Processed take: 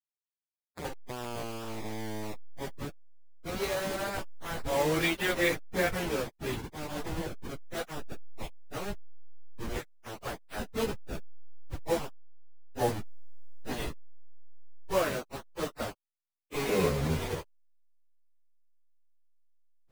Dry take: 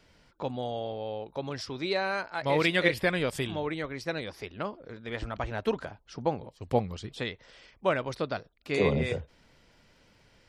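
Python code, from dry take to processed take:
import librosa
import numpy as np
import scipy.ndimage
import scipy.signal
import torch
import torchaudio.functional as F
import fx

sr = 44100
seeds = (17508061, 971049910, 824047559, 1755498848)

y = fx.delta_hold(x, sr, step_db=-24.5)
y = fx.stretch_vocoder_free(y, sr, factor=1.9)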